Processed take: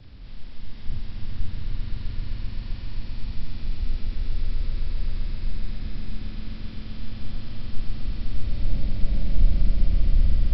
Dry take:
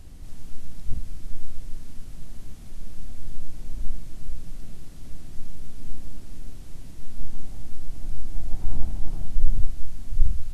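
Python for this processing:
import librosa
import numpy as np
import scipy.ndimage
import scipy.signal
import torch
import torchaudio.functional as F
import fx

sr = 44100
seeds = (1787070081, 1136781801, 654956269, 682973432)

y = fx.partial_stretch(x, sr, pct=77)
y = fx.echo_swell(y, sr, ms=130, loudest=5, wet_db=-4)
y = y * librosa.db_to_amplitude(1.0)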